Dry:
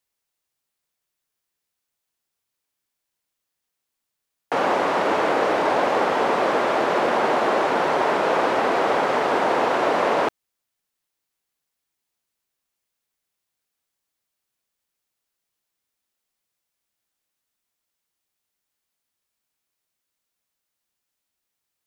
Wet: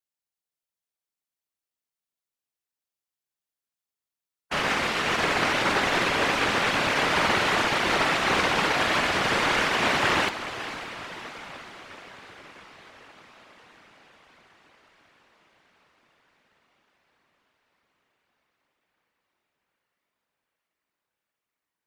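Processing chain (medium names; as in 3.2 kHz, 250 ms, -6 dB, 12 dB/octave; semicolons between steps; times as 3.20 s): spectral peaks clipped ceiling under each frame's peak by 20 dB; on a send: echo that smears into a reverb 531 ms, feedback 72%, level -9 dB; on the sum: whisper effect; upward expansion 1.5:1, over -34 dBFS; trim -3 dB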